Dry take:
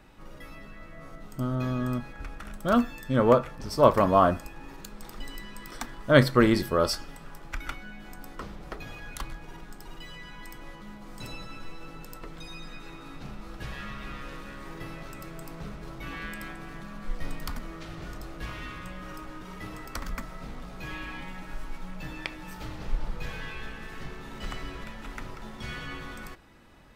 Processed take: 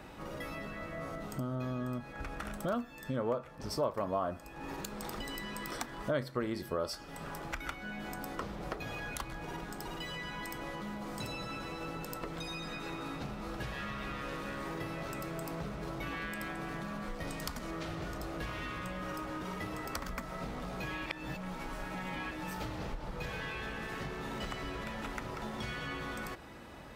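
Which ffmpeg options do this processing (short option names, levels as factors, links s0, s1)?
-filter_complex "[0:a]asettb=1/sr,asplit=3[s0][s1][s2];[s0]atrim=end=17.274[s3];[s1]atrim=start=17.27:end=17.71,asetpts=PTS-STARTPTS,afade=t=in:d=0.004:c=qsin,afade=t=out:st=0.436:d=0.004:c=qsin,equalizer=f=7000:w=0.65:g=6.5[s4];[s2]atrim=start=17.706[s5];[s3][s4]acrossfade=d=0.004:c1=hsin:c2=qsin[s6];[s6][s5]acrossfade=d=0.004:c1=qsin:c2=hsin,asplit=3[s7][s8][s9];[s7]atrim=end=21.062[s10];[s8]atrim=start=21.058:end=22.312,asetpts=PTS-STARTPTS,areverse[s11];[s9]atrim=start=22.308[s12];[s10][s11]acrossfade=d=0.004:c1=hsin:c2=hsin[s13];[s13][s12]acrossfade=d=0.004:c1=hsin:c2=hsin,highpass=49,acompressor=threshold=0.00708:ratio=4,equalizer=f=610:w=0.95:g=4,volume=1.78"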